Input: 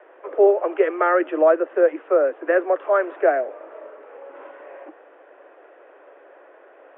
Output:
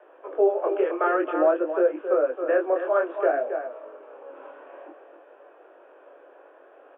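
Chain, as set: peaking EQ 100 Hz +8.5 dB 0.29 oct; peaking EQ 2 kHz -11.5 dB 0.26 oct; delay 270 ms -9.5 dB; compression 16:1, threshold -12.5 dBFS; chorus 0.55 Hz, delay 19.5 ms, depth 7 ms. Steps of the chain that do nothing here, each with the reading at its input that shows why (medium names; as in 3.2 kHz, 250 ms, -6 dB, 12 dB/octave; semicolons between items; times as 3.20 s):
peaking EQ 100 Hz: input has nothing below 270 Hz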